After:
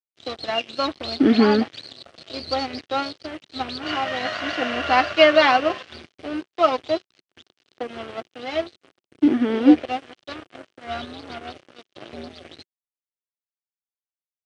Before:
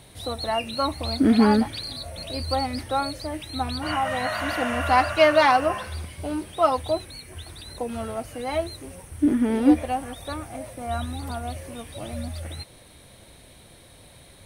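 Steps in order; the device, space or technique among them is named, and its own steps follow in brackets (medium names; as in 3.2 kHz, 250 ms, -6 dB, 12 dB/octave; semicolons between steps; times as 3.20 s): blown loudspeaker (crossover distortion -33 dBFS; cabinet simulation 160–5500 Hz, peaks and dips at 190 Hz -5 dB, 360 Hz +5 dB, 930 Hz -7 dB, 3 kHz +5 dB); trim +4 dB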